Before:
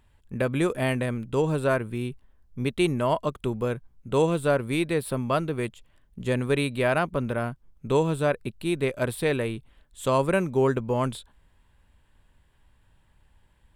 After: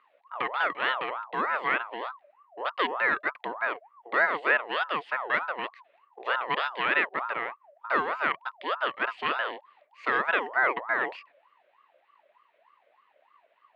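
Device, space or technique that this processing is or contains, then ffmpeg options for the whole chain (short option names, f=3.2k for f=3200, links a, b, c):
voice changer toy: -af "aeval=exprs='val(0)*sin(2*PI*870*n/s+870*0.35/3.3*sin(2*PI*3.3*n/s))':c=same,highpass=440,equalizer=f=800:t=q:w=4:g=-6,equalizer=f=1.9k:t=q:w=4:g=8,equalizer=f=2.8k:t=q:w=4:g=4,lowpass=f=3.5k:w=0.5412,lowpass=f=3.5k:w=1.3066"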